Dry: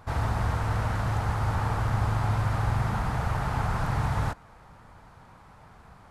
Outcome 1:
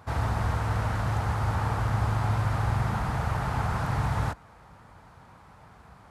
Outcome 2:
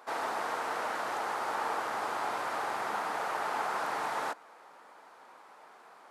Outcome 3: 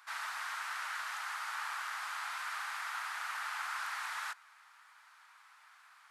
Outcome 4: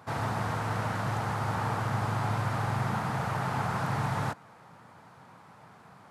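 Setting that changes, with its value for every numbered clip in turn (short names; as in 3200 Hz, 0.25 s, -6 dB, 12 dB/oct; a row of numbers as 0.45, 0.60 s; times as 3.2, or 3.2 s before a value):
HPF, cutoff: 44, 340, 1300, 120 Hz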